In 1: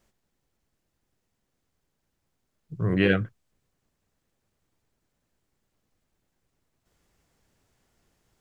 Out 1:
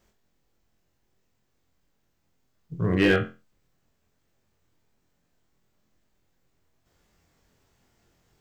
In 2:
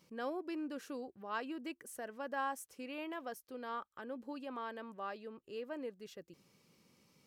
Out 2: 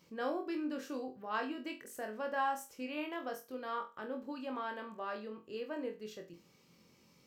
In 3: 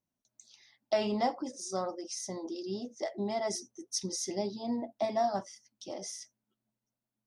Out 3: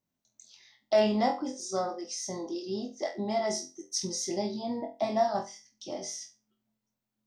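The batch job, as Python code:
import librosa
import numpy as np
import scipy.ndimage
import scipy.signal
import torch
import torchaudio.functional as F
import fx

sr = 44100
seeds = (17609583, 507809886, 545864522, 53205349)

p1 = fx.peak_eq(x, sr, hz=10000.0, db=-10.0, octaves=0.31)
p2 = fx.room_flutter(p1, sr, wall_m=4.0, rt60_s=0.28)
p3 = 10.0 ** (-15.5 / 20.0) * (np.abs((p2 / 10.0 ** (-15.5 / 20.0) + 3.0) % 4.0 - 2.0) - 1.0)
p4 = p2 + F.gain(torch.from_numpy(p3), -4.0).numpy()
y = F.gain(torch.from_numpy(p4), -2.5).numpy()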